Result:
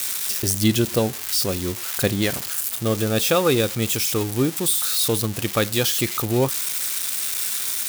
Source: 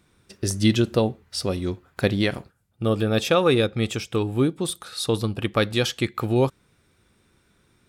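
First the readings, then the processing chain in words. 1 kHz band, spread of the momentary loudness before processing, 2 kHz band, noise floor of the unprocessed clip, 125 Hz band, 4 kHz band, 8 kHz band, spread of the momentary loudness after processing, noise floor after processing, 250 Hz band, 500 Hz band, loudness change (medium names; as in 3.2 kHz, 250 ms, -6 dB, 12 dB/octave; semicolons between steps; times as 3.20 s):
+0.5 dB, 9 LU, +1.5 dB, -64 dBFS, 0.0 dB, +4.5 dB, +13.0 dB, 4 LU, -32 dBFS, 0.0 dB, 0.0 dB, +2.5 dB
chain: zero-crossing glitches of -15.5 dBFS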